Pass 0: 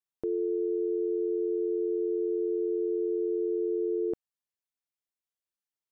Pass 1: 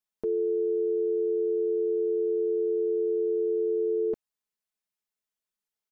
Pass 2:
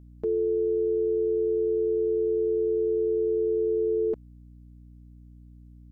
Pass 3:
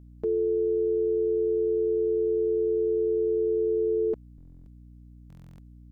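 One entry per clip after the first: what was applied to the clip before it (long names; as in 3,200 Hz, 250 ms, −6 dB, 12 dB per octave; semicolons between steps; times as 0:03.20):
comb filter 4.7 ms, depth 77%
mains hum 60 Hz, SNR 22 dB; level +1.5 dB
buffer that repeats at 0:04.36/0:05.28, samples 1,024, times 12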